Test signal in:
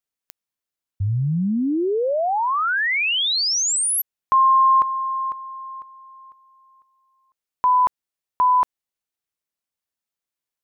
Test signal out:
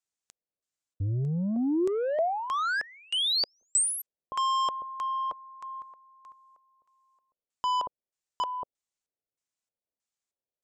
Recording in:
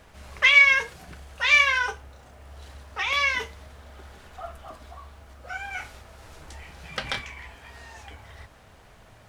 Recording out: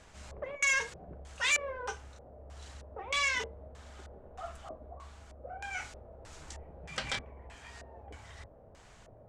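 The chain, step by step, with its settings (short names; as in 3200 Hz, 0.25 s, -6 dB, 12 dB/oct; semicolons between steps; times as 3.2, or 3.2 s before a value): soft clip -20.5 dBFS; LFO low-pass square 1.6 Hz 560–7500 Hz; gain -4.5 dB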